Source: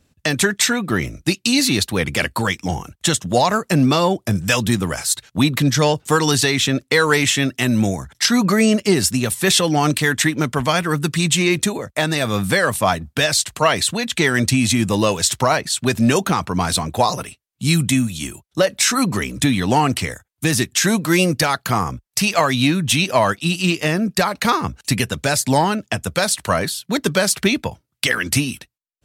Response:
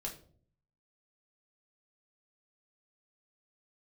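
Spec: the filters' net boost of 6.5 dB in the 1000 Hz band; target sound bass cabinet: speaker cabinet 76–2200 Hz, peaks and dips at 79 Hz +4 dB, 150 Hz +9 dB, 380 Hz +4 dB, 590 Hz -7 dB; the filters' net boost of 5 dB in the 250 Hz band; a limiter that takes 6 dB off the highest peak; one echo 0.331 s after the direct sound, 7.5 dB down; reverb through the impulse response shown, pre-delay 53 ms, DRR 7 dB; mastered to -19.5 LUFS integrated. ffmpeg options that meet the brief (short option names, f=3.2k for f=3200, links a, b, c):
-filter_complex "[0:a]equalizer=f=250:t=o:g=3.5,equalizer=f=1k:t=o:g=8.5,alimiter=limit=-4dB:level=0:latency=1,aecho=1:1:331:0.422,asplit=2[a][b];[1:a]atrim=start_sample=2205,adelay=53[c];[b][c]afir=irnorm=-1:irlink=0,volume=-6dB[d];[a][d]amix=inputs=2:normalize=0,highpass=f=76:w=0.5412,highpass=f=76:w=1.3066,equalizer=f=79:t=q:w=4:g=4,equalizer=f=150:t=q:w=4:g=9,equalizer=f=380:t=q:w=4:g=4,equalizer=f=590:t=q:w=4:g=-7,lowpass=f=2.2k:w=0.5412,lowpass=f=2.2k:w=1.3066,volume=-5.5dB"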